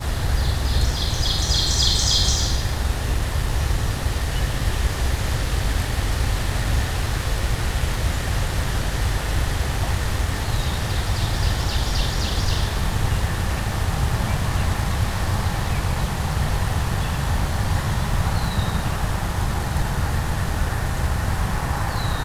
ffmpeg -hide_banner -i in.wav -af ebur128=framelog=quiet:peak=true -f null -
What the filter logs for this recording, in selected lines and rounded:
Integrated loudness:
  I:         -23.1 LUFS
  Threshold: -33.1 LUFS
Loudness range:
  LRA:         3.6 LU
  Threshold: -43.3 LUFS
  LRA low:   -24.1 LUFS
  LRA high:  -20.5 LUFS
True peak:
  Peak:       -4.9 dBFS